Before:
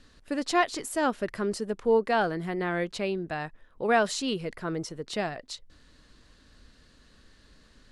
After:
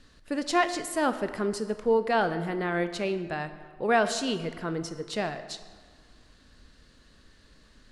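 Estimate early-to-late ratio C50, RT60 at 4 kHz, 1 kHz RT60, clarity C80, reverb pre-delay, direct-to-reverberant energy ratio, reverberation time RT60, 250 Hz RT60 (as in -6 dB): 11.5 dB, 1.1 s, 1.7 s, 12.5 dB, 19 ms, 10.0 dB, 1.7 s, 1.5 s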